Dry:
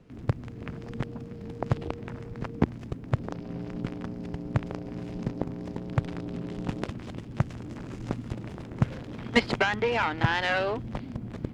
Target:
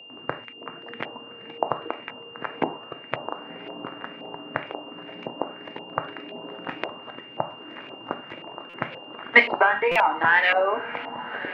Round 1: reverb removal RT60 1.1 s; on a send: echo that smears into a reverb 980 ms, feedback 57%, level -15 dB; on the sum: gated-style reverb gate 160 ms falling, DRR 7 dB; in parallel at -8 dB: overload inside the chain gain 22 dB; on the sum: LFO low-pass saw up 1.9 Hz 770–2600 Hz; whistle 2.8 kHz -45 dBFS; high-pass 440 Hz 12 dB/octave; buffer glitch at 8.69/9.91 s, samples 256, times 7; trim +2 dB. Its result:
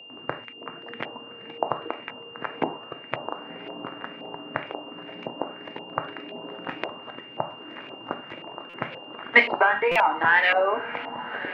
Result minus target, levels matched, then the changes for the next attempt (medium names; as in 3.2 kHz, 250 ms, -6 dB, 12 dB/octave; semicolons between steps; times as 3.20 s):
overload inside the chain: distortion +18 dB
change: overload inside the chain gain 11.5 dB